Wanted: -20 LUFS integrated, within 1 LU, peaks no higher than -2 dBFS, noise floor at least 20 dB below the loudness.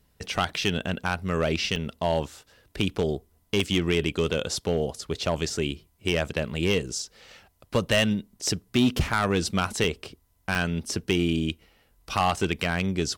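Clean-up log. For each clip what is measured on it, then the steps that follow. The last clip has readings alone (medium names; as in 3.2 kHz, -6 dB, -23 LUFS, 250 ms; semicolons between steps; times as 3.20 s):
clipped samples 0.6%; clipping level -15.0 dBFS; dropouts 7; longest dropout 2.1 ms; loudness -27.0 LUFS; peak level -15.0 dBFS; loudness target -20.0 LUFS
-> clip repair -15 dBFS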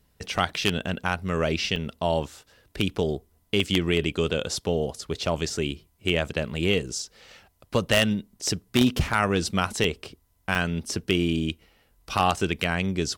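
clipped samples 0.0%; dropouts 7; longest dropout 2.1 ms
-> interpolate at 1.08/1.76/3.60/5.26/6.99/9.84/10.55 s, 2.1 ms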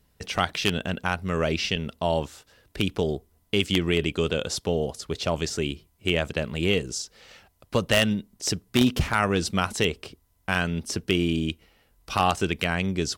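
dropouts 0; loudness -26.0 LUFS; peak level -6.0 dBFS; loudness target -20.0 LUFS
-> trim +6 dB; peak limiter -2 dBFS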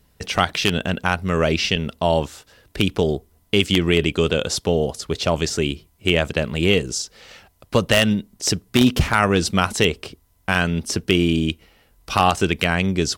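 loudness -20.5 LUFS; peak level -2.0 dBFS; noise floor -60 dBFS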